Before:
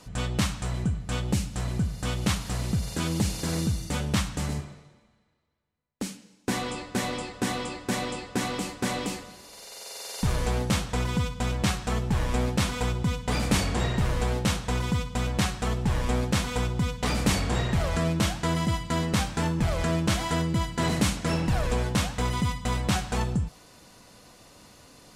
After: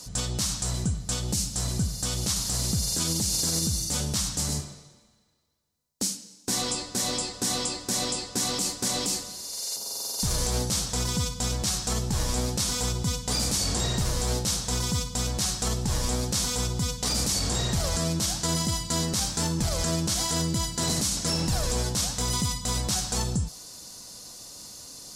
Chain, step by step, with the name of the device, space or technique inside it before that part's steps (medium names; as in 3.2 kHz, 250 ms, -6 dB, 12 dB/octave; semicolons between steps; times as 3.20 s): over-bright horn tweeter (resonant high shelf 3.6 kHz +12.5 dB, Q 1.5; peak limiter -16.5 dBFS, peak gain reduction 11 dB); 9.76–10.20 s: graphic EQ 125/250/500/1000/2000/4000/8000 Hz +10/+11/-4/+4/-10/-3/-7 dB